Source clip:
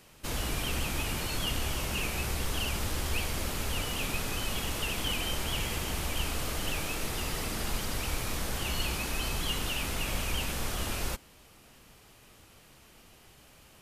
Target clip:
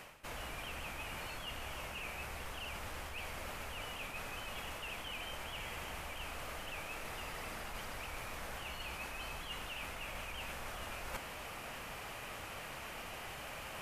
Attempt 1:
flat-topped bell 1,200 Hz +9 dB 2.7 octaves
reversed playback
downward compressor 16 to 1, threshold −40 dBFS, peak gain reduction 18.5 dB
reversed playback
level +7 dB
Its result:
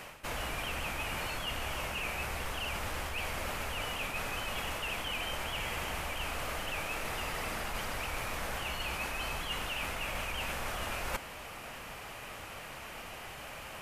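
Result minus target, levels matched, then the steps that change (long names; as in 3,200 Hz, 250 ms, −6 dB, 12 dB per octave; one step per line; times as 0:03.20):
downward compressor: peak gain reduction −7.5 dB
change: downward compressor 16 to 1, threshold −48 dBFS, peak gain reduction 26 dB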